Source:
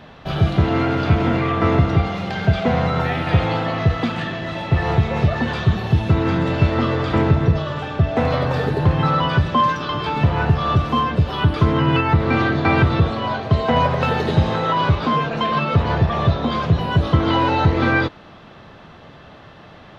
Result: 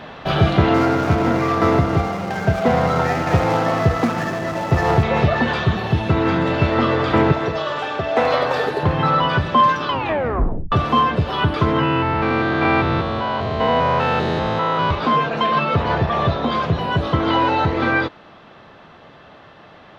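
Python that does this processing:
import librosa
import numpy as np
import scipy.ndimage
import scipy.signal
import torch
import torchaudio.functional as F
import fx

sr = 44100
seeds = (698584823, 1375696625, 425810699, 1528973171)

y = fx.median_filter(x, sr, points=15, at=(0.74, 5.03))
y = fx.bass_treble(y, sr, bass_db=-13, treble_db=4, at=(7.32, 8.83))
y = fx.spec_steps(y, sr, hold_ms=200, at=(11.83, 14.91))
y = fx.edit(y, sr, fx.tape_stop(start_s=9.88, length_s=0.84), tone=tone)
y = fx.low_shelf(y, sr, hz=200.0, db=-10.0)
y = fx.rider(y, sr, range_db=10, speed_s=2.0)
y = fx.high_shelf(y, sr, hz=4000.0, db=-6.0)
y = F.gain(torch.from_numpy(y), 4.0).numpy()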